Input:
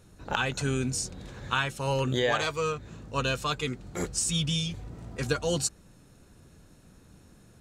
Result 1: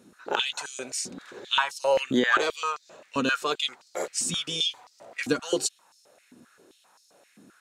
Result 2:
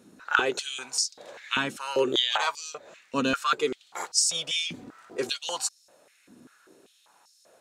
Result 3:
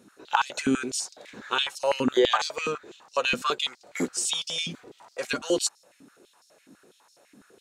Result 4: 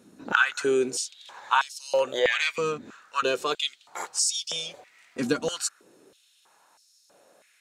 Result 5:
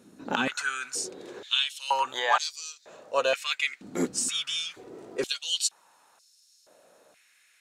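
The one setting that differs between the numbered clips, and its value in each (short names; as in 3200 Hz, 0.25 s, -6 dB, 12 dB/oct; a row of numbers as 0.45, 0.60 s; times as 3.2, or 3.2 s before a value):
stepped high-pass, rate: 7.6, 5.1, 12, 3.1, 2.1 Hz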